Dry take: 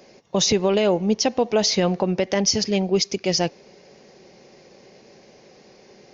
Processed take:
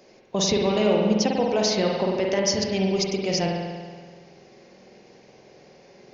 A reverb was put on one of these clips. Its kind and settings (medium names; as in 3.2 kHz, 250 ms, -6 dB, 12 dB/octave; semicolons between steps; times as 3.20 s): spring tank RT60 1.6 s, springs 47 ms, chirp 25 ms, DRR -1 dB; trim -4.5 dB